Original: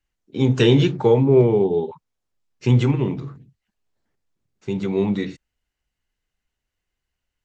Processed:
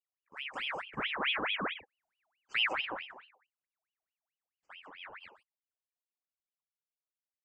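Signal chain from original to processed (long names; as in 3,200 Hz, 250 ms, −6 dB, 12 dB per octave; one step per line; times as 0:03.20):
source passing by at 0:02.08, 24 m/s, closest 7.3 metres
brick-wall band-stop 2,300–5,300 Hz
ring modulator whose carrier an LFO sweeps 1,800 Hz, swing 65%, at 4.6 Hz
level −6.5 dB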